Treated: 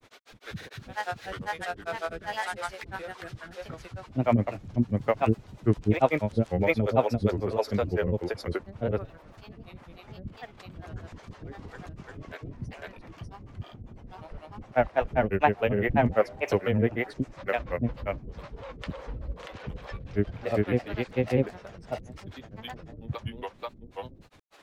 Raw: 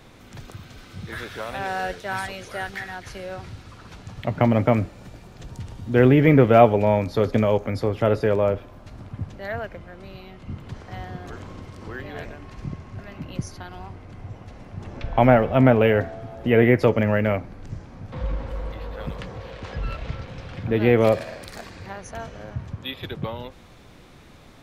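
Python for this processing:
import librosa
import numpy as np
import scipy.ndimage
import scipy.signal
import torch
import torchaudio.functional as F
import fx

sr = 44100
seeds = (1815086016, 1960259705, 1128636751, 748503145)

y = fx.harmonic_tremolo(x, sr, hz=2.0, depth_pct=100, crossover_hz=400.0)
y = fx.granulator(y, sr, seeds[0], grain_ms=100.0, per_s=20.0, spray_ms=855.0, spread_st=3)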